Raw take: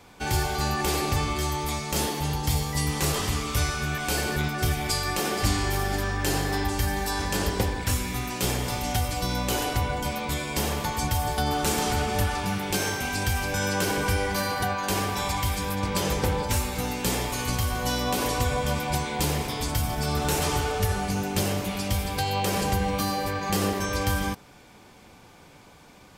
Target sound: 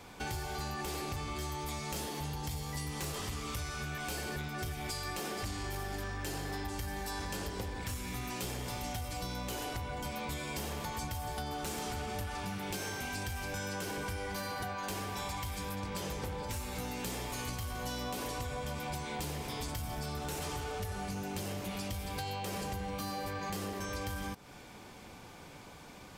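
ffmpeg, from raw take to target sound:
ffmpeg -i in.wav -af "acompressor=threshold=-35dB:ratio=5,asoftclip=type=tanh:threshold=-30dB" out.wav

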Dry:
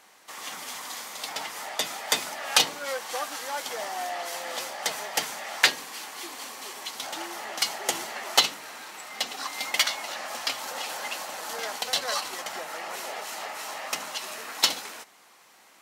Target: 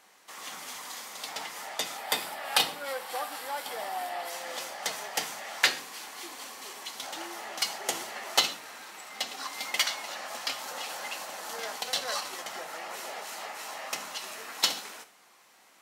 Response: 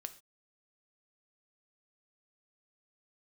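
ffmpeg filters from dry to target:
-filter_complex "[0:a]asettb=1/sr,asplit=3[link_01][link_02][link_03];[link_01]atrim=end=1.974[link_04];[link_02]atrim=start=1.97:end=4.3,asetpts=PTS-STARTPTS,afade=type=in:duration=0.004:curve=qsin,afade=type=out:start_time=2.326:duration=0.004:curve=qsin,equalizer=frequency=800:width_type=o:width=0.33:gain=4,equalizer=frequency=6300:width_type=o:width=0.33:gain=-10,equalizer=frequency=12500:width_type=o:width=0.33:gain=4[link_05];[link_03]atrim=start=4.296[link_06];[link_04][link_05]acrossfade=duration=0.004:curve1=hsin:curve2=qsin[link_07];[link_07][link_06]acrossfade=duration=0.004:curve1=qsin:curve2=hsin[link_08];[1:a]atrim=start_sample=2205[link_09];[link_08][link_09]afir=irnorm=-1:irlink=0"

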